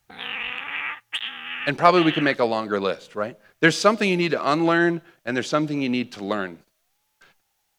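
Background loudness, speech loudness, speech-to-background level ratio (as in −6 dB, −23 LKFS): −29.5 LKFS, −22.0 LKFS, 7.5 dB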